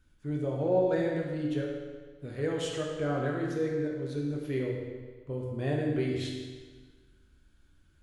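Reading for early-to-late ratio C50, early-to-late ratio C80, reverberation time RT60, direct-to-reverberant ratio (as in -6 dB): 1.5 dB, 3.5 dB, 1.5 s, -2.0 dB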